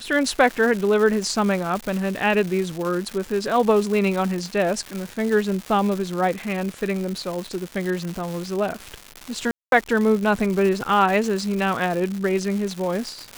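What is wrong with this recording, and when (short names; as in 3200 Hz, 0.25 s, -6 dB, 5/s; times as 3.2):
crackle 330/s -26 dBFS
9.51–9.72 gap 0.212 s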